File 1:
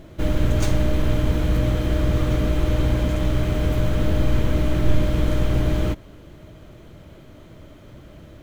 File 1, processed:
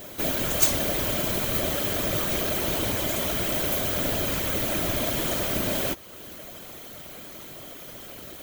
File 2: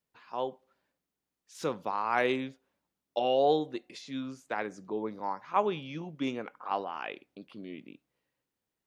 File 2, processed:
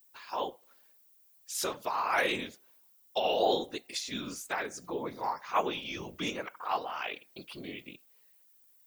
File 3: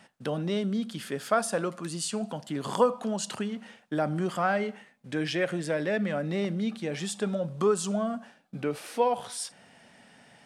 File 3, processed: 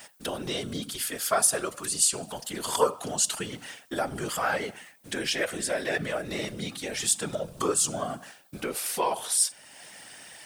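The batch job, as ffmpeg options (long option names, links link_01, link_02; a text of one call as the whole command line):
ffmpeg -i in.wav -filter_complex "[0:a]aemphasis=mode=production:type=riaa,asplit=2[link_01][link_02];[link_02]acompressor=threshold=-42dB:ratio=8,volume=2dB[link_03];[link_01][link_03]amix=inputs=2:normalize=0,afftfilt=real='hypot(re,im)*cos(2*PI*random(0))':imag='hypot(re,im)*sin(2*PI*random(1))':win_size=512:overlap=0.75,volume=4.5dB" out.wav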